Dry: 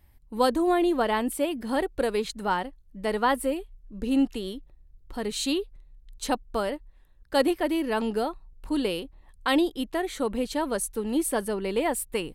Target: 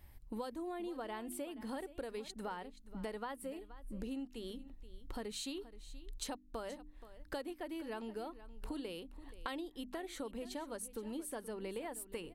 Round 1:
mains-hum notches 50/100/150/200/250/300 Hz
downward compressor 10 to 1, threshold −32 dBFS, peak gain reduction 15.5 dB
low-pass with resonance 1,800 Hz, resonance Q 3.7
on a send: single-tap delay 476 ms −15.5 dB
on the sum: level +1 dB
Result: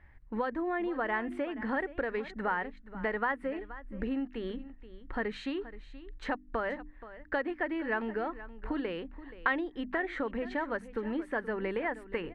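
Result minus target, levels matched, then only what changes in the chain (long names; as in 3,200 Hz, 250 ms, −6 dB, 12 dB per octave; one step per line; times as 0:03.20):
downward compressor: peak gain reduction −8.5 dB; 2,000 Hz band +7.5 dB
change: downward compressor 10 to 1, threshold −41.5 dBFS, peak gain reduction 24 dB
remove: low-pass with resonance 1,800 Hz, resonance Q 3.7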